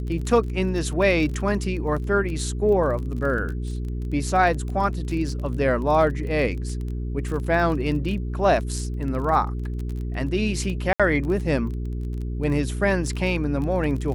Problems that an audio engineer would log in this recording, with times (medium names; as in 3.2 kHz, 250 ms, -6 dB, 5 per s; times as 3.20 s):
crackle 23 per s -30 dBFS
hum 60 Hz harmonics 7 -28 dBFS
10.93–11.00 s: dropout 66 ms